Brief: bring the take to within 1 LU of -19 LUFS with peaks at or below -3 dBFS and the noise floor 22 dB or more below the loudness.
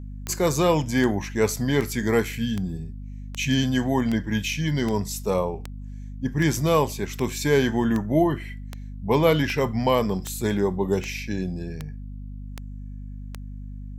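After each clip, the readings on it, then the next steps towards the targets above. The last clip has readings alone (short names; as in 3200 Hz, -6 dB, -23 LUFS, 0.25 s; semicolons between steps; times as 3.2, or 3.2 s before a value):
clicks 18; hum 50 Hz; harmonics up to 250 Hz; hum level -33 dBFS; loudness -24.0 LUFS; peak -6.5 dBFS; loudness target -19.0 LUFS
-> de-click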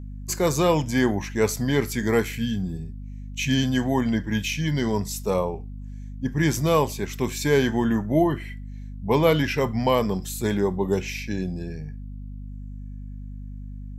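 clicks 0; hum 50 Hz; harmonics up to 250 Hz; hum level -33 dBFS
-> notches 50/100/150/200/250 Hz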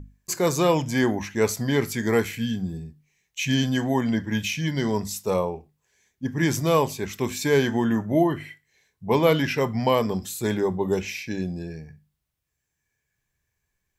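hum none; loudness -24.5 LUFS; peak -7.5 dBFS; loudness target -19.0 LUFS
-> gain +5.5 dB; limiter -3 dBFS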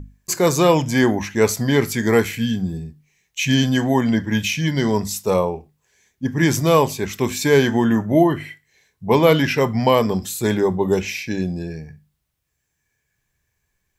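loudness -19.0 LUFS; peak -3.0 dBFS; noise floor -74 dBFS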